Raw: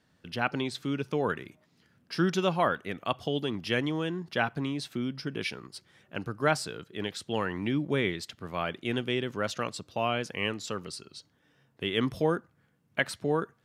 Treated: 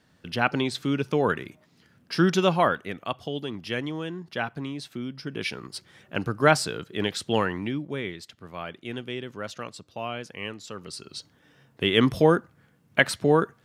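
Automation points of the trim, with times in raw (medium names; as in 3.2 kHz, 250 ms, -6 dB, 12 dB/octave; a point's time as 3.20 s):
2.54 s +5.5 dB
3.20 s -1.5 dB
5.16 s -1.5 dB
5.73 s +7 dB
7.37 s +7 dB
7.87 s -4 dB
10.73 s -4 dB
11.15 s +8 dB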